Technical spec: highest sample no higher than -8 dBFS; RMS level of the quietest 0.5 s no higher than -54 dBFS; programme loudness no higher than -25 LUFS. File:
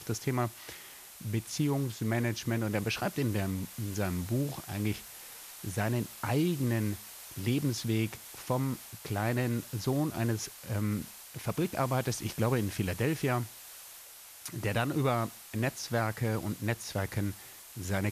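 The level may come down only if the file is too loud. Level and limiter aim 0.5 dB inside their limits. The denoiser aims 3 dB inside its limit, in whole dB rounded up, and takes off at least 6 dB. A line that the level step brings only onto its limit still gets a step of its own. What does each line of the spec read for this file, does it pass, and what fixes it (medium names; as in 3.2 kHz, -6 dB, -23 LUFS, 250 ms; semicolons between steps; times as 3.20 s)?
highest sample -17.0 dBFS: pass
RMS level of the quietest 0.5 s -50 dBFS: fail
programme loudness -33.0 LUFS: pass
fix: noise reduction 7 dB, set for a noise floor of -50 dBFS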